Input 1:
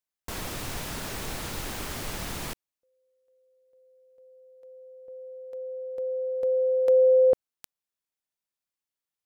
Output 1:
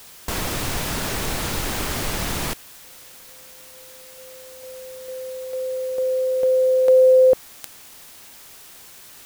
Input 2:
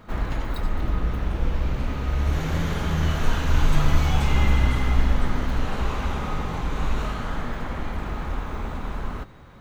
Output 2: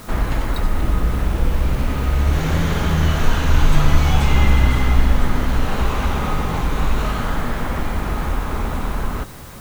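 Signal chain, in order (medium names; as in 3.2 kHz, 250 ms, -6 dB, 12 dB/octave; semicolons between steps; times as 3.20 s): in parallel at -1 dB: compression 10:1, threshold -30 dBFS; on the sum: word length cut 8-bit, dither triangular; trim +4 dB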